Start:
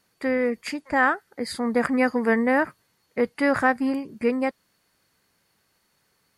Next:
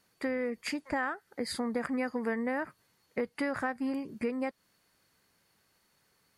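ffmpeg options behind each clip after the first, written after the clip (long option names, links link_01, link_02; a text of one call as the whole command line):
ffmpeg -i in.wav -af "acompressor=threshold=-27dB:ratio=5,volume=-2.5dB" out.wav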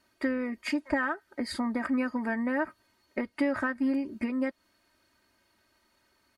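ffmpeg -i in.wav -af "highshelf=frequency=5300:gain=-9,aecho=1:1:3.2:0.82,volume=1.5dB" out.wav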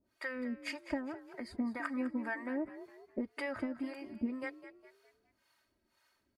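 ffmpeg -i in.wav -filter_complex "[0:a]acrossover=split=580[link_01][link_02];[link_01]aeval=exprs='val(0)*(1-1/2+1/2*cos(2*PI*1.9*n/s))':channel_layout=same[link_03];[link_02]aeval=exprs='val(0)*(1-1/2-1/2*cos(2*PI*1.9*n/s))':channel_layout=same[link_04];[link_03][link_04]amix=inputs=2:normalize=0,asplit=5[link_05][link_06][link_07][link_08][link_09];[link_06]adelay=205,afreqshift=46,volume=-13.5dB[link_10];[link_07]adelay=410,afreqshift=92,volume=-21.2dB[link_11];[link_08]adelay=615,afreqshift=138,volume=-29dB[link_12];[link_09]adelay=820,afreqshift=184,volume=-36.7dB[link_13];[link_05][link_10][link_11][link_12][link_13]amix=inputs=5:normalize=0,volume=-2.5dB" out.wav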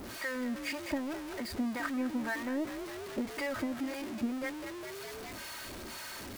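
ffmpeg -i in.wav -af "aeval=exprs='val(0)+0.5*0.0133*sgn(val(0))':channel_layout=same" out.wav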